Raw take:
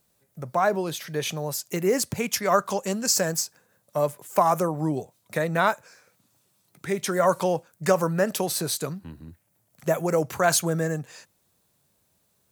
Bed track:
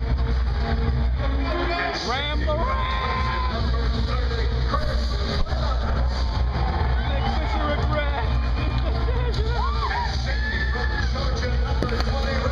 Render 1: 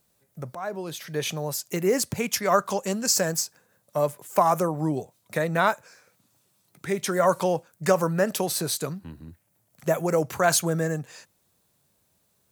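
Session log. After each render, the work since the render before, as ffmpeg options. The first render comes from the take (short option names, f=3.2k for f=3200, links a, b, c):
-filter_complex "[0:a]asplit=2[a][b];[a]atrim=end=0.55,asetpts=PTS-STARTPTS,afade=t=out:st=0.546:d=0.004:c=hsin:silence=0.16788[c];[b]atrim=start=0.55,asetpts=PTS-STARTPTS,afade=t=in:d=0.65:silence=0.16788[d];[c][d]concat=n=2:v=0:a=1"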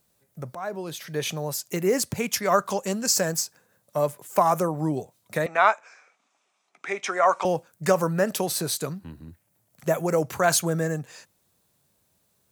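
-filter_complex "[0:a]asettb=1/sr,asplit=3[a][b][c];[a]atrim=end=5.464[d];[b]atrim=start=5.46:end=7.45,asetpts=PTS-STARTPTS,afade=t=in:d=0.004:c=qsin,afade=t=out:st=1.986:d=0.004:c=qsin,highpass=f=300:w=0.5412,highpass=f=300:w=1.3066,equalizer=f=330:t=q:w=4:g=-8,equalizer=f=510:t=q:w=4:g=-6,equalizer=f=740:t=q:w=4:g=6,equalizer=f=1.2k:t=q:w=4:g=6,equalizer=f=2.3k:t=q:w=4:g=8,equalizer=f=4.4k:t=q:w=4:g=-8,lowpass=f=6.7k:w=0.5412,lowpass=f=6.7k:w=1.3066[e];[c]atrim=start=7.446[f];[d][e]acrossfade=d=0.004:c1=hsin:c2=qsin[g];[g][f]acrossfade=d=0.004:c1=qsin:c2=hsin"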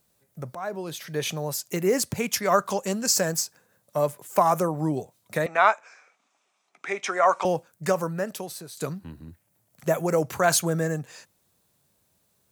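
-filter_complex "[0:a]asplit=2[a][b];[a]atrim=end=8.77,asetpts=PTS-STARTPTS,afade=t=out:st=7.48:d=1.29:silence=0.141254[c];[b]atrim=start=8.77,asetpts=PTS-STARTPTS,afade=t=in:d=0.004:c=hsin:silence=0.141254[d];[c][d]concat=n=2:v=0:a=1"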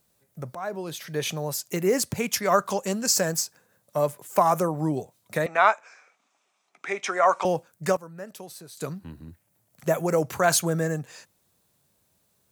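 -filter_complex "[0:a]asplit=2[a][b];[a]atrim=end=7.97,asetpts=PTS-STARTPTS,afade=t=out:st=7.966:d=0.004:c=hsin:silence=0.133352[c];[b]atrim=start=7.97,asetpts=PTS-STARTPTS,afade=t=in:d=1.15:silence=0.133352[d];[c][d]concat=n=2:v=0:a=1"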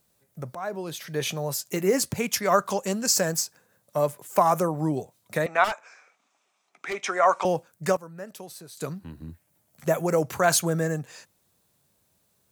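-filter_complex "[0:a]asettb=1/sr,asplit=3[a][b][c];[a]atrim=end=1.194[d];[b]atrim=start=1.19:end=2.09,asetpts=PTS-STARTPTS,afade=t=in:d=0.004:c=qsin,afade=t=out:st=0.896:d=0.004:c=qsin,asplit=2[e][f];[f]adelay=15,volume=-11dB[g];[e][g]amix=inputs=2:normalize=0,atrim=end_sample=39690[h];[c]atrim=start=2.086[i];[d][h]acrossfade=d=0.004:c1=hsin:c2=qsin[j];[j][i]acrossfade=d=0.004:c1=qsin:c2=hsin,asettb=1/sr,asplit=3[k][l][m];[k]atrim=end=5.644[n];[l]atrim=start=5.64:end=7.04,asetpts=PTS-STARTPTS,afade=t=in:d=0.004:c=qsin,afade=t=out:st=1.396:d=0.004:c=qsin,volume=25.5dB,asoftclip=hard,volume=-25.5dB[o];[m]atrim=start=7.036[p];[n][o]acrossfade=d=0.004:c1=hsin:c2=qsin[q];[q][p]acrossfade=d=0.004:c1=qsin:c2=hsin,asettb=1/sr,asplit=3[r][s][t];[r]atrim=end=9.194[u];[s]atrim=start=9.19:end=9.88,asetpts=PTS-STARTPTS,afade=t=in:d=0.004:c=qsin,afade=t=out:st=0.686:d=0.004:c=qsin,asplit=2[v][w];[w]adelay=13,volume=-4.5dB[x];[v][x]amix=inputs=2:normalize=0,atrim=end_sample=30429[y];[t]atrim=start=9.876[z];[u][y]acrossfade=d=0.004:c1=hsin:c2=qsin[aa];[aa][z]acrossfade=d=0.004:c1=qsin:c2=hsin"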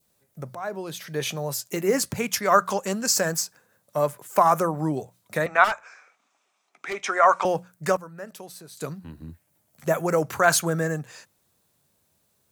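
-af "bandreject=f=60:t=h:w=6,bandreject=f=120:t=h:w=6,bandreject=f=180:t=h:w=6,adynamicequalizer=threshold=0.0178:dfrequency=1400:dqfactor=1.4:tfrequency=1400:tqfactor=1.4:attack=5:release=100:ratio=0.375:range=3:mode=boostabove:tftype=bell"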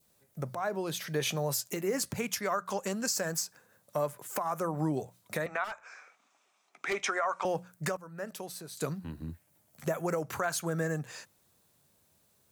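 -af "acompressor=threshold=-28dB:ratio=2.5,alimiter=limit=-19.5dB:level=0:latency=1:release=402"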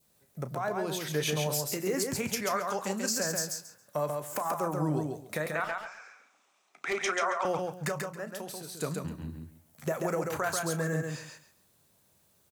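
-filter_complex "[0:a]asplit=2[a][b];[b]adelay=33,volume=-12.5dB[c];[a][c]amix=inputs=2:normalize=0,asplit=2[d][e];[e]aecho=0:1:137|274|411:0.631|0.126|0.0252[f];[d][f]amix=inputs=2:normalize=0"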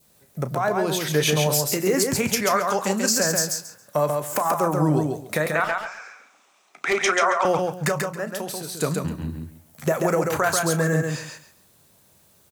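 -af "volume=9.5dB"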